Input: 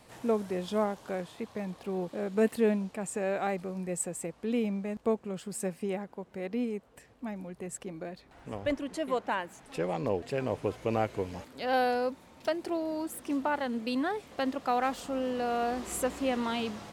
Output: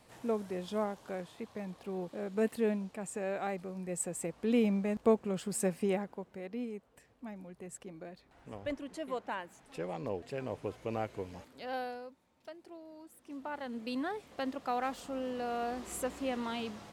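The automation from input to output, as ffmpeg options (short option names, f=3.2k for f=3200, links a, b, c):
-af "volume=14.5dB,afade=t=in:st=3.81:d=0.83:silence=0.446684,afade=t=out:st=5.92:d=0.51:silence=0.354813,afade=t=out:st=11.46:d=0.63:silence=0.281838,afade=t=in:st=13.2:d=0.72:silence=0.237137"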